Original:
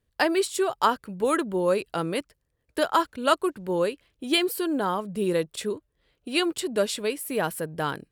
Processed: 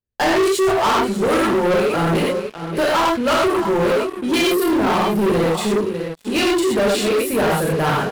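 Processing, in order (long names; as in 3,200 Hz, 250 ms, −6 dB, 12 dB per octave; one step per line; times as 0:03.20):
high-shelf EQ 2,800 Hz −8.5 dB
single-tap delay 598 ms −14 dB
reverb whose tail is shaped and stops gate 150 ms flat, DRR −4.5 dB
leveller curve on the samples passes 5
level −8 dB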